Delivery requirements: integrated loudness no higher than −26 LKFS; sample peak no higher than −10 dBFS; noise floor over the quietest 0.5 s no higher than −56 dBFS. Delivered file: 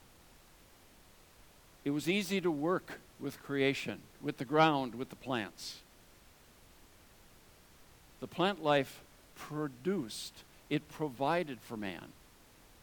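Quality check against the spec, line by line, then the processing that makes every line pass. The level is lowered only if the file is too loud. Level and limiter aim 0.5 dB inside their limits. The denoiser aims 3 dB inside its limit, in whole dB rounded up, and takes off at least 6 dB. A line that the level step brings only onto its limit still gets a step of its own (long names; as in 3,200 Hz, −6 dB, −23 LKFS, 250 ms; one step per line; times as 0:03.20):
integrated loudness −35.5 LKFS: in spec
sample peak −13.5 dBFS: in spec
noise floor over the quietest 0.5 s −61 dBFS: in spec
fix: no processing needed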